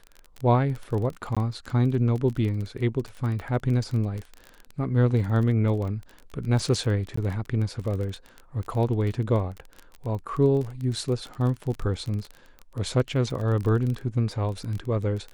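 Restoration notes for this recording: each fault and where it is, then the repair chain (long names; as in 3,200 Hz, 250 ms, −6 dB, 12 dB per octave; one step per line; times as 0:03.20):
surface crackle 23 per second −30 dBFS
0:01.35–0:01.37: drop-out 16 ms
0:07.16–0:07.17: drop-out 14 ms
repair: click removal
repair the gap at 0:01.35, 16 ms
repair the gap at 0:07.16, 14 ms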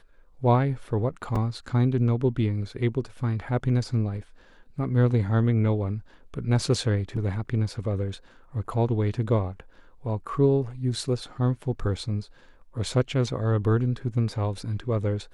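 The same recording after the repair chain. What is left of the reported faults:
none of them is left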